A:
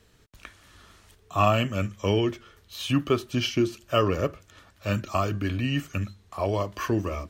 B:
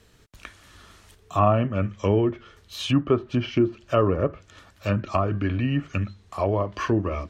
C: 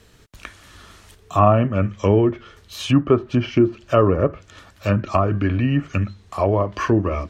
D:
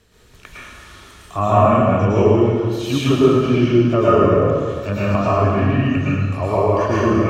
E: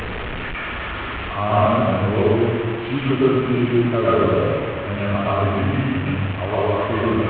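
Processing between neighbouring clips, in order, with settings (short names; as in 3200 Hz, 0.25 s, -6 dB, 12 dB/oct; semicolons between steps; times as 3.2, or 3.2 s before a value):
treble ducked by the level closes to 1200 Hz, closed at -21 dBFS; gain +3 dB
dynamic EQ 3600 Hz, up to -5 dB, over -47 dBFS, Q 1.7; gain +5 dB
plate-style reverb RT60 1.9 s, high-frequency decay 0.9×, pre-delay 95 ms, DRR -9 dB; gain -5.5 dB
delta modulation 16 kbps, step -17 dBFS; gain -3.5 dB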